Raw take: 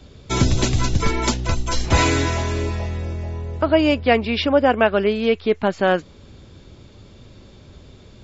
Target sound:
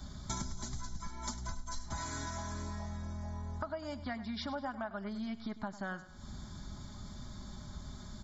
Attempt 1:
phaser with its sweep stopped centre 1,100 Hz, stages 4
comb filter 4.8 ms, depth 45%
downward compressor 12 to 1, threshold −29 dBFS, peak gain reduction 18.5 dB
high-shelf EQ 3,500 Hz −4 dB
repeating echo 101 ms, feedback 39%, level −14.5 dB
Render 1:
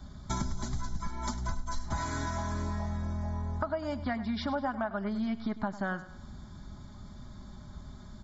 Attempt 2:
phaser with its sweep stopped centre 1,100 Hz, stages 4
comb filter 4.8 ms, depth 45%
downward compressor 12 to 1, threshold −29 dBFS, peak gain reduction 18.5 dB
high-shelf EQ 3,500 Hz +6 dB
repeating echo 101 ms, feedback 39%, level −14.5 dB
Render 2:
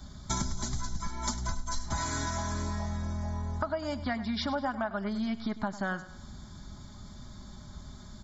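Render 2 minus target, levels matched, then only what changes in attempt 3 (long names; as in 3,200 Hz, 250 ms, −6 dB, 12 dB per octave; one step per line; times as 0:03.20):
downward compressor: peak gain reduction −7.5 dB
change: downward compressor 12 to 1, threshold −37 dBFS, peak gain reduction 26 dB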